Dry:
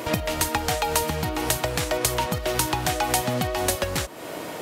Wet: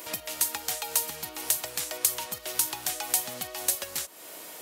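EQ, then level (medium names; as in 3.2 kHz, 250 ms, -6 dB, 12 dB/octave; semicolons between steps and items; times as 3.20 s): pre-emphasis filter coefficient 0.8; bass shelf 75 Hz -5.5 dB; bass shelf 190 Hz -11.5 dB; 0.0 dB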